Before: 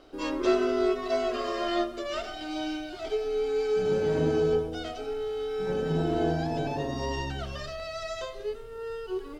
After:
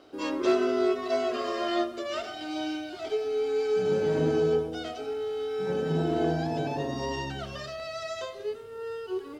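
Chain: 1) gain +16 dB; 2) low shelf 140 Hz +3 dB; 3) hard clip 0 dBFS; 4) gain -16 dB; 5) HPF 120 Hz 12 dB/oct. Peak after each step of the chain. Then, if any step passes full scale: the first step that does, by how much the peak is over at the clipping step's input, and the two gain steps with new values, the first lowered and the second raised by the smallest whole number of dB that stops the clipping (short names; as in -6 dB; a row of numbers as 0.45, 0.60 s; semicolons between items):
+3.0, +3.5, 0.0, -16.0, -13.5 dBFS; step 1, 3.5 dB; step 1 +12 dB, step 4 -12 dB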